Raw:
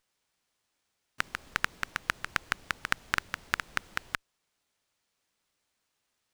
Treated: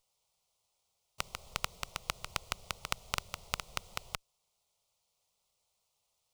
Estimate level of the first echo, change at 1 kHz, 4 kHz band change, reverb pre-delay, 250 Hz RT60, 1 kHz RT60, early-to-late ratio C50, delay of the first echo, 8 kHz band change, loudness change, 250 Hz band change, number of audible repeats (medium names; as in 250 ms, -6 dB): no echo, -5.0 dB, -1.0 dB, no reverb, no reverb, no reverb, no reverb, no echo, +1.5 dB, -6.0 dB, -7.0 dB, no echo